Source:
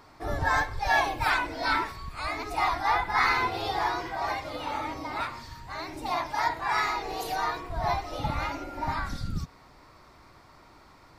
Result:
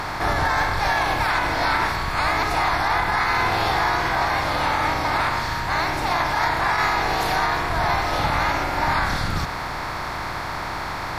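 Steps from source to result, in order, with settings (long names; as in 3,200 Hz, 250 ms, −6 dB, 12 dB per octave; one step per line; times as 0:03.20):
compressor on every frequency bin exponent 0.4
brickwall limiter −13.5 dBFS, peak gain reduction 7 dB
level +2 dB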